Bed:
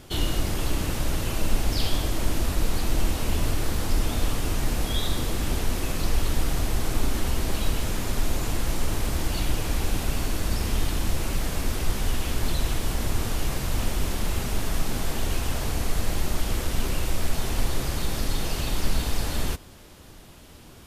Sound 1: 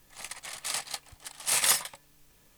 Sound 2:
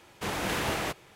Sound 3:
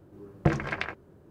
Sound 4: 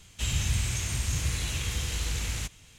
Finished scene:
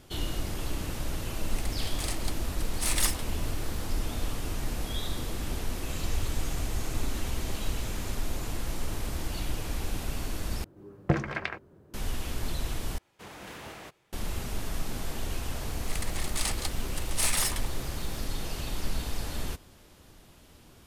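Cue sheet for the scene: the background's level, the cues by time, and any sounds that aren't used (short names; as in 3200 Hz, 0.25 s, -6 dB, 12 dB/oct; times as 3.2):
bed -7 dB
1.34 add 1 -4.5 dB
5.68 add 4 -14 dB + comb 2.6 ms
10.64 replace with 3 -1.5 dB
12.98 replace with 2 -13.5 dB
15.71 add 1 -16 dB + maximiser +17 dB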